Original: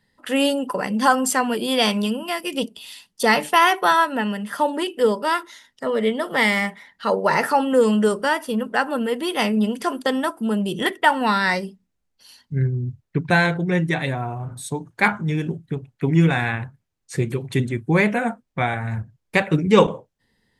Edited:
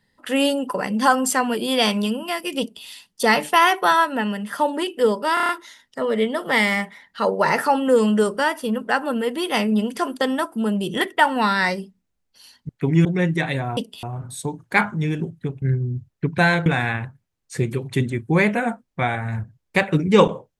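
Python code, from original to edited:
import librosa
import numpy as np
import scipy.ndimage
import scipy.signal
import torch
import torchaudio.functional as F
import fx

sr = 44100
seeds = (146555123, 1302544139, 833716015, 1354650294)

y = fx.edit(x, sr, fx.duplicate(start_s=2.6, length_s=0.26, to_s=14.3),
    fx.stutter(start_s=5.34, slice_s=0.03, count=6),
    fx.swap(start_s=12.54, length_s=1.04, other_s=15.89, other_length_s=0.36), tone=tone)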